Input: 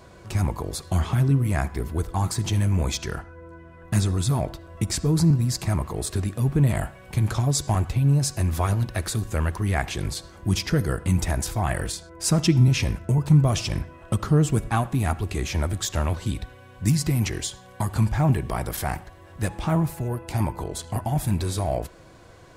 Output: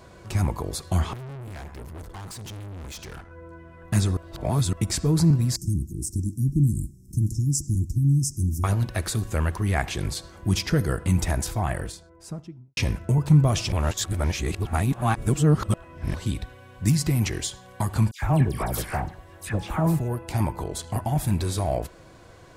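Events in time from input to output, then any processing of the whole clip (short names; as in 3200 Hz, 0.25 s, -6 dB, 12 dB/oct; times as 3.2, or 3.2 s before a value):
1.13–3.31 tube stage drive 36 dB, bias 0.65
4.17–4.73 reverse
5.56–8.64 Chebyshev band-stop 330–5500 Hz, order 5
11.31–12.77 studio fade out
13.72–16.14 reverse
18.11–19.99 dispersion lows, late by 0.113 s, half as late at 1700 Hz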